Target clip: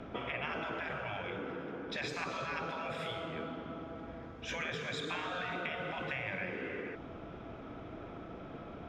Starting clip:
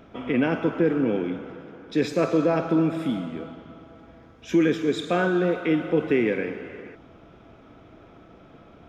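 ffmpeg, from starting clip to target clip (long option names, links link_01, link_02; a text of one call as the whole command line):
ffmpeg -i in.wav -filter_complex "[0:a]afftfilt=real='re*lt(hypot(re,im),0.141)':imag='im*lt(hypot(re,im),0.141)':win_size=1024:overlap=0.75,aemphasis=mode=reproduction:type=50fm,acrossover=split=360|990|2000[link_01][link_02][link_03][link_04];[link_01]acompressor=threshold=-49dB:ratio=4[link_05];[link_02]acompressor=threshold=-47dB:ratio=4[link_06];[link_03]acompressor=threshold=-50dB:ratio=4[link_07];[link_04]acompressor=threshold=-44dB:ratio=4[link_08];[link_05][link_06][link_07][link_08]amix=inputs=4:normalize=0,volume=3.5dB" out.wav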